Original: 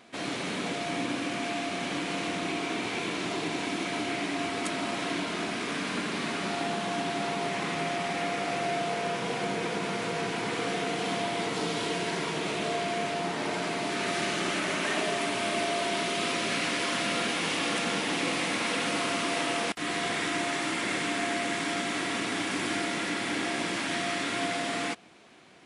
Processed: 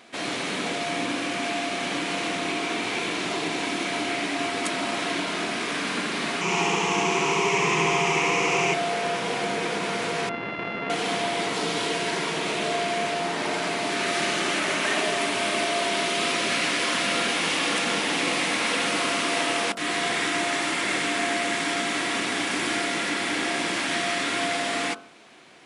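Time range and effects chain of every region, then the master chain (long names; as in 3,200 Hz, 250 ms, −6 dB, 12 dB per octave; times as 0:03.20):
0:06.41–0:08.74: EQ curve with evenly spaced ripples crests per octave 0.75, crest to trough 13 dB + flutter between parallel walls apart 11.8 metres, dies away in 1.2 s
0:10.29–0:10.90: samples sorted by size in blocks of 64 samples + low-pass filter 2,700 Hz 24 dB per octave
whole clip: low-shelf EQ 230 Hz −7 dB; hum removal 45.9 Hz, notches 34; level +5.5 dB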